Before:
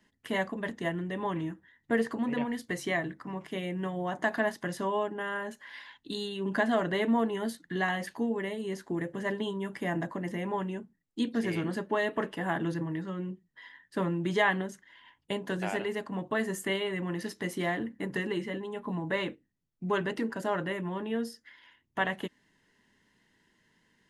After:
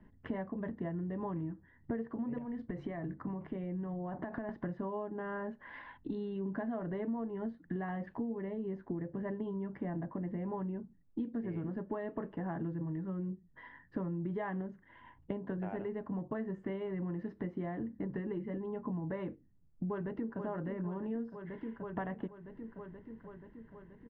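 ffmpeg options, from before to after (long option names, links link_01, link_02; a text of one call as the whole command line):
ffmpeg -i in.wav -filter_complex "[0:a]asettb=1/sr,asplit=3[link_01][link_02][link_03];[link_01]atrim=end=2.384[link_04];[link_02]atrim=start=2.38:end=4.49,asetpts=PTS-STARTPTS,afade=type=in:duration=0.004:curve=qsin,afade=type=out:start_time=2.106:duration=0.004:curve=qsin,acompressor=threshold=-35dB:ratio=6:attack=3.2:release=140:knee=1:detection=peak[link_05];[link_03]atrim=start=4.486[link_06];[link_04][link_05]acrossfade=duration=0.004:curve1=hsin:curve2=qsin[link_07];[link_07][link_06]acrossfade=duration=0.004:curve1=qsin:curve2=hsin,asplit=2[link_08][link_09];[link_09]afade=type=in:start_time=19.89:duration=0.01,afade=type=out:start_time=20.4:duration=0.01,aecho=0:1:480|960|1440|1920|2400|2880|3360|3840|4320|4800:0.281838|0.197287|0.138101|0.0966705|0.0676694|0.0473686|0.033158|0.0232106|0.0162474|0.0113732[link_10];[link_08][link_10]amix=inputs=2:normalize=0,lowpass=1300,aemphasis=mode=reproduction:type=bsi,acompressor=threshold=-42dB:ratio=5,volume=5dB" out.wav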